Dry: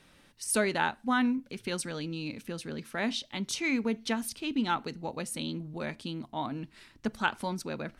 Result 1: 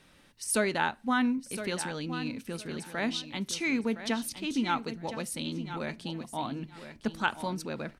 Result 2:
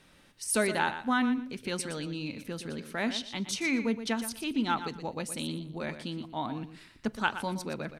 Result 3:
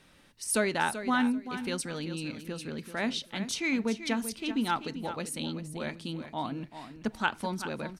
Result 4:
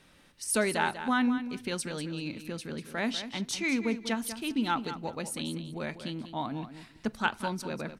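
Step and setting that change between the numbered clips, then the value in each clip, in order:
feedback delay, time: 1014 ms, 119 ms, 386 ms, 194 ms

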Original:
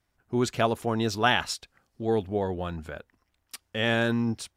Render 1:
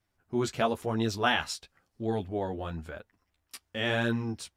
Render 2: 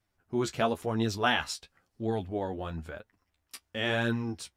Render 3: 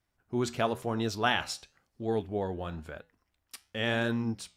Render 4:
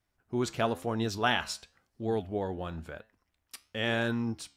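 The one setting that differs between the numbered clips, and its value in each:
flange, regen: -14%, +26%, -80%, +82%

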